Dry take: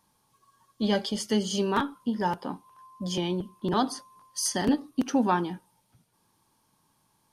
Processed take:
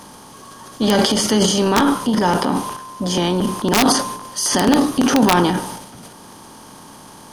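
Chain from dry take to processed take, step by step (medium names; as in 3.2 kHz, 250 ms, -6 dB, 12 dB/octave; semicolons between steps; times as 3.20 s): spectral levelling over time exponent 0.6; integer overflow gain 11 dB; transient shaper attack -1 dB, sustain +11 dB; trim +7 dB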